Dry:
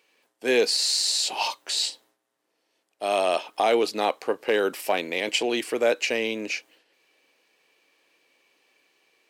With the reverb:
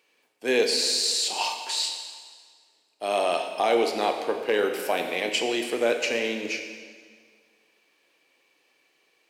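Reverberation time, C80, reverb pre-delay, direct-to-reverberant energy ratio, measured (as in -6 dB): 1.8 s, 7.0 dB, 21 ms, 4.5 dB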